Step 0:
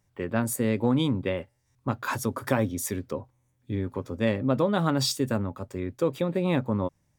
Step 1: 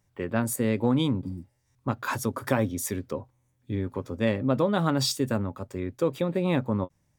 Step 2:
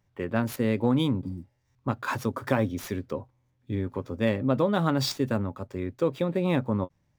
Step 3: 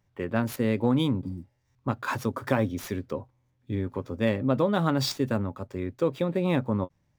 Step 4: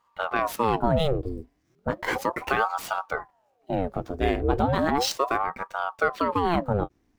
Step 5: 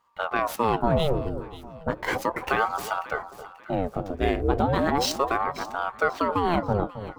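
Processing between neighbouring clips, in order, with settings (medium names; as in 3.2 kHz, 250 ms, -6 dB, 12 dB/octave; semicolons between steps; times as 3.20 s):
spectral replace 1.26–1.49 s, 350–4500 Hz both; endings held to a fixed fall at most 570 dB/s
median filter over 5 samples
no audible change
in parallel at -1 dB: peak limiter -18 dBFS, peak gain reduction 10 dB; on the sum: ring modulator with a swept carrier 610 Hz, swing 75%, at 0.35 Hz
echo whose repeats swap between lows and highs 269 ms, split 1.1 kHz, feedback 58%, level -11 dB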